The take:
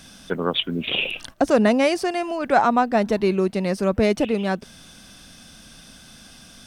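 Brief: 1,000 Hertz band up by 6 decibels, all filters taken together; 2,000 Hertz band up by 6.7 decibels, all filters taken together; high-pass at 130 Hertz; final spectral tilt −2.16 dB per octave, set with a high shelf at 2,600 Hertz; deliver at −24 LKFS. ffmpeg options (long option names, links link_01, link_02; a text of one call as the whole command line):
ffmpeg -i in.wav -af "highpass=130,equalizer=frequency=1000:width_type=o:gain=7,equalizer=frequency=2000:width_type=o:gain=5,highshelf=frequency=2600:gain=3.5,volume=-6dB" out.wav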